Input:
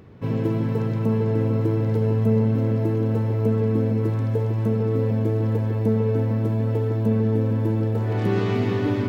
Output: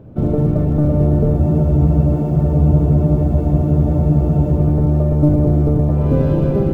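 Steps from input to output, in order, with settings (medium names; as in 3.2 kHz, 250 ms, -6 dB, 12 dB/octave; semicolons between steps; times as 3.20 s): octave divider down 1 oct, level -1 dB; treble shelf 2.1 kHz -8.5 dB; speed mistake 33 rpm record played at 45 rpm; band-stop 1.9 kHz, Q 8.8; short-mantissa float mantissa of 4-bit; tilt shelf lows +8 dB, about 1.1 kHz; spectral freeze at 1.40 s, 3.18 s; trim -1.5 dB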